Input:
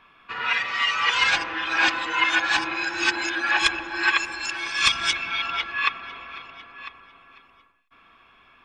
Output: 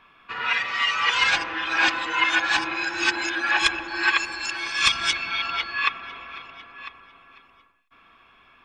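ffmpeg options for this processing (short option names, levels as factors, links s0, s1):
-filter_complex "[0:a]asettb=1/sr,asplit=3[s0][s1][s2];[s0]atrim=end=3.884[s3];[s1]atrim=start=3.88:end=5.85,asetpts=PTS-STARTPTS,afade=t=in:d=0.004:c=qsin,afade=t=out:st=1.966:d=0.004:c=qsin,aeval=exprs='val(0)+0.00891*sin(2*PI*4400*n/s)':c=same[s4];[s2]atrim=start=5.846[s5];[s3][s4]acrossfade=d=0.004:c1=hsin:c2=qsin[s6];[s6][s5]acrossfade=d=0.004:c1=qsin:c2=hsin"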